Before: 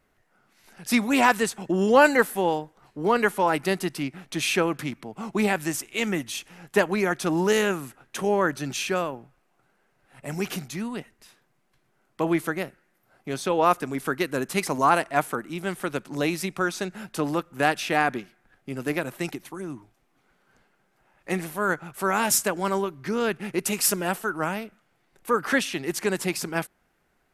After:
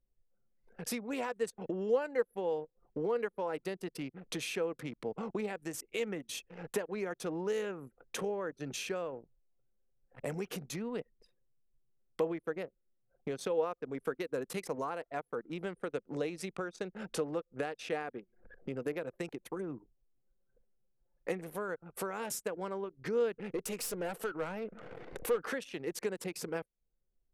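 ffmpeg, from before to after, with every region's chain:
-filter_complex "[0:a]asettb=1/sr,asplit=3[a][b][c];[a]atrim=end=15.744[d];[b]atrim=start=15.74:end=18.82,asetpts=PTS-STARTPTS,afade=t=in:d=0.004:c=qsin,afade=t=out:st=3.076:d=0.004:c=qsin,lowpass=f=11k:w=0.5412,lowpass=f=11k:w=1.3066,bandreject=f=980:w=22,acompressor=mode=upward:threshold=-40dB:ratio=2.5:attack=3.2:release=140:knee=2.83:detection=peak[e];[c]atrim=start=18.816[f];[d][e]acrossfade=d=0.004:c1=hsin:c2=qsin[g];[g][f]acrossfade=d=0.004:c1=qsin:c2=hsin,asettb=1/sr,asplit=3[h][i][j];[h]atrim=end=23.384[k];[i]atrim=start=23.38:end=25.44,asetpts=PTS-STARTPTS,afade=t=in:d=0.004:c=qsin,afade=t=out:st=2.056:d=0.004:c=qsin,acompressor=mode=upward:threshold=-28dB:ratio=2.5:attack=3.2:release=140:knee=2.83:detection=peak,aeval=exprs='(tanh(12.6*val(0)+0.25)-tanh(0.25))/12.6':c=same[l];[j]atrim=start=25.436[m];[k][l]acrossfade=d=0.004:c1=hsin:c2=qsin[n];[n][m]acrossfade=d=0.004:c1=qsin:c2=hsin,acompressor=threshold=-38dB:ratio=6,equalizer=f=480:w=4:g=13.5,anlmdn=0.0398"

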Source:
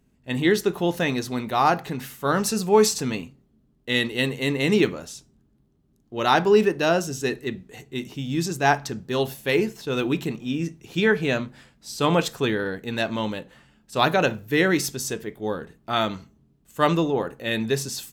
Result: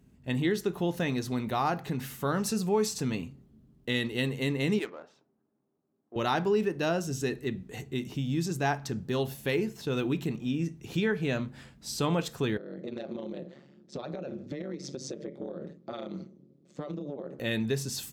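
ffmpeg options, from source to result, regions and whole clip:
-filter_complex "[0:a]asettb=1/sr,asplit=3[a][b][c];[a]atrim=end=4.794[d];[b]atrim=start=4.79:end=6.16,asetpts=PTS-STARTPTS,afade=t=in:d=0.004:c=qsin,afade=t=out:st=1.366:d=0.004:c=qsin,highpass=590,highshelf=f=4.4k:g=-8.5,adynamicsmooth=sensitivity=4.5:basefreq=1.3k[e];[c]atrim=start=6.156[f];[d][e]acrossfade=d=0.004:c1=hsin:c2=qsin[g];[g][f]acrossfade=d=0.004:c1=qsin:c2=hsin,asettb=1/sr,asplit=3[h][i][j];[h]atrim=end=12.574[k];[i]atrim=start=12.57:end=17.39,asetpts=PTS-STARTPTS,afade=t=in:d=0.004:c=qsin,afade=t=out:st=4.816:d=0.004:c=qsin,tremolo=f=140:d=0.974,highpass=f=140:w=0.5412,highpass=f=140:w=1.3066,equalizer=f=180:t=q:w=4:g=8,equalizer=f=350:t=q:w=4:g=9,equalizer=f=550:t=q:w=4:g=10,equalizer=f=950:t=q:w=4:g=-6,equalizer=f=1.6k:t=q:w=4:g=-7,equalizer=f=2.8k:t=q:w=4:g=-8,lowpass=f=5.9k:w=0.5412,lowpass=f=5.9k:w=1.3066,acompressor=threshold=-34dB:ratio=16:attack=3.2:release=140:knee=1:detection=peak[l];[j]atrim=start=17.386[m];[k][l]acrossfade=d=0.004:c1=hsin:c2=qsin[n];[n][m]acrossfade=d=0.004:c1=qsin:c2=hsin,highpass=57,lowshelf=f=230:g=8,acompressor=threshold=-33dB:ratio=2"

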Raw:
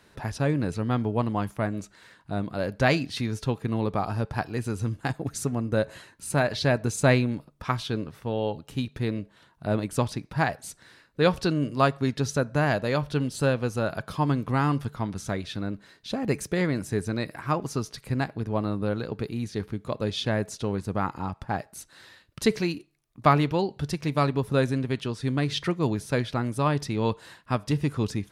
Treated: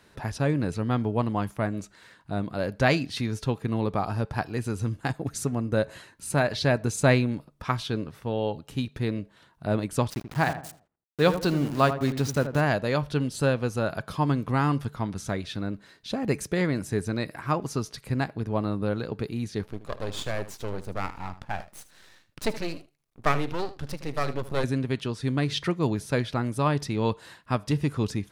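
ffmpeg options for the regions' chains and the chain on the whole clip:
-filter_complex "[0:a]asettb=1/sr,asplit=3[a][b][c];[a]atrim=end=10.104[d];[b]atrim=start=10.1:end=12.61,asetpts=PTS-STARTPTS,afade=t=in:d=0.004:c=qsin,afade=t=out:st=2.506:d=0.004:c=qsin,aeval=exprs='val(0)*gte(abs(val(0)),0.0188)':c=same,asplit=2[e][f];[f]adelay=82,lowpass=f=1.3k:p=1,volume=-9dB,asplit=2[g][h];[h]adelay=82,lowpass=f=1.3k:p=1,volume=0.4,asplit=2[i][j];[j]adelay=82,lowpass=f=1.3k:p=1,volume=0.4,asplit=2[k][l];[l]adelay=82,lowpass=f=1.3k:p=1,volume=0.4[m];[e][g][i][k][m]amix=inputs=5:normalize=0,atrim=end_sample=110691[n];[c]atrim=start=12.606[o];[d][n]acrossfade=d=0.004:c1=hsin:c2=qsin[p];[p][o]acrossfade=d=0.004:c1=qsin:c2=hsin,asettb=1/sr,asplit=3[q][r][s];[q]atrim=end=19.634[t];[r]atrim=start=19.63:end=24.64,asetpts=PTS-STARTPTS,afade=t=in:d=0.004:c=qsin,afade=t=out:st=5.006:d=0.004:c=qsin,aeval=exprs='max(val(0),0)':c=same,aecho=1:1:77:0.188,atrim=end_sample=220941[u];[s]atrim=start=24.636[v];[t][u]acrossfade=d=0.004:c1=hsin:c2=qsin[w];[w][v]acrossfade=d=0.004:c1=qsin:c2=hsin"

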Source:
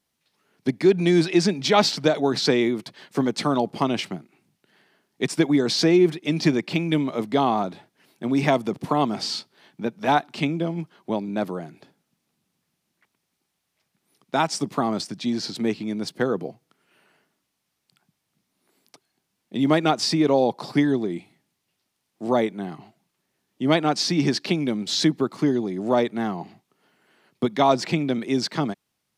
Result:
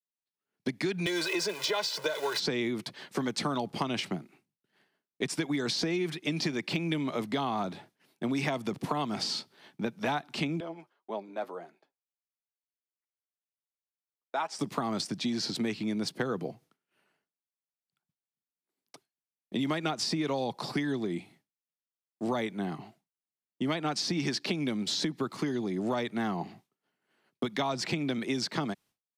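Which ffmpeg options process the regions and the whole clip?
-filter_complex "[0:a]asettb=1/sr,asplit=3[a][b][c];[a]atrim=end=1.064[d];[b]atrim=start=1.06:end=2.4,asetpts=PTS-STARTPTS,afade=t=in:d=0.004:c=qsin,afade=t=out:st=1.336:d=0.004:c=qsin,aeval=exprs='val(0)+0.5*0.0282*sgn(val(0))':c=same,highpass=520,aecho=1:1:2:0.95,atrim=end_sample=59094[e];[c]atrim=start=2.396[f];[d][e]acrossfade=d=0.004:c1=hsin:c2=qsin[g];[g][f]acrossfade=d=0.004:c1=qsin:c2=hsin,asettb=1/sr,asplit=3[h][i][j];[h]atrim=end=10.604[k];[i]atrim=start=10.6:end=14.59,asetpts=PTS-STARTPTS,afade=t=in:d=0.004:c=qsin,afade=t=out:st=3.986:d=0.004:c=qsin,highpass=550,highshelf=f=2.3k:g=-10.5,flanger=delay=4.4:depth=4.1:regen=47:speed=1.8:shape=triangular[l];[j]atrim=start=14.586[m];[k][l]acrossfade=d=0.004:c1=hsin:c2=qsin[n];[n][m]acrossfade=d=0.004:c1=qsin:c2=hsin,acrossover=split=180|1100[o][p][q];[o]acompressor=threshold=-37dB:ratio=4[r];[p]acompressor=threshold=-30dB:ratio=4[s];[q]acompressor=threshold=-30dB:ratio=4[t];[r][s][t]amix=inputs=3:normalize=0,agate=range=-33dB:threshold=-52dB:ratio=3:detection=peak,acompressor=threshold=-26dB:ratio=6"

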